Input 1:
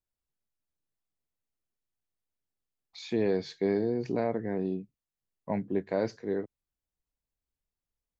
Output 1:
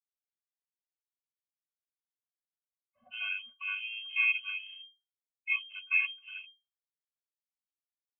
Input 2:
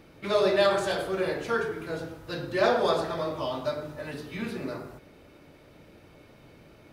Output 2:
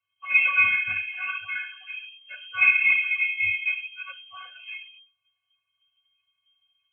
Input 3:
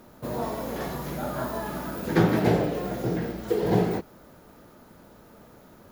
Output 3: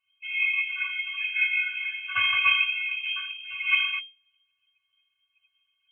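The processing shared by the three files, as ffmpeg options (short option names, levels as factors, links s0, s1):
-af "afftdn=nr=29:nf=-38,highpass=f=230:p=1,adynamicequalizer=threshold=0.0141:dfrequency=720:dqfactor=1.2:tfrequency=720:tqfactor=1.2:attack=5:release=100:ratio=0.375:range=2.5:mode=boostabove:tftype=bell,acontrast=87,afftfilt=real='hypot(re,im)*cos(PI*b)':imag='0':win_size=512:overlap=0.75,aphaser=in_gain=1:out_gain=1:delay=3.6:decay=0.22:speed=1.6:type=sinusoidal,lowpass=f=2700:t=q:w=0.5098,lowpass=f=2700:t=q:w=0.6013,lowpass=f=2700:t=q:w=0.9,lowpass=f=2700:t=q:w=2.563,afreqshift=-3200,afftfilt=real='re*eq(mod(floor(b*sr/1024/250),2),0)':imag='im*eq(mod(floor(b*sr/1024/250),2),0)':win_size=1024:overlap=0.75,volume=1.88"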